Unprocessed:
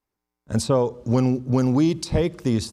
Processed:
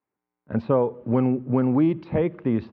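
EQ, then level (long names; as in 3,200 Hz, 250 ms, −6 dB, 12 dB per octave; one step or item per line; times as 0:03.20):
high-pass filter 140 Hz 12 dB per octave
low-pass filter 2,500 Hz 24 dB per octave
high-frequency loss of the air 140 metres
0.0 dB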